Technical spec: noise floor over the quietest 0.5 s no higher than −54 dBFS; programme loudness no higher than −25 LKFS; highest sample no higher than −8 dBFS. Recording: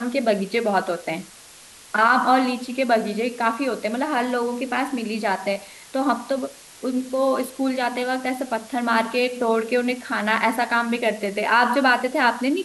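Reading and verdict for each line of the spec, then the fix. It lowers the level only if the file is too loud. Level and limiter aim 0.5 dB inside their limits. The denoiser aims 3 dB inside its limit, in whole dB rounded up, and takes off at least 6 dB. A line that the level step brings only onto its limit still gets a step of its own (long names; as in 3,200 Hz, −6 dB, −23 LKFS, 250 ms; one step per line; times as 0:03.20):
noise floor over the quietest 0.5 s −46 dBFS: out of spec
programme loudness −22.0 LKFS: out of spec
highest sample −5.5 dBFS: out of spec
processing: broadband denoise 8 dB, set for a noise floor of −46 dBFS
level −3.5 dB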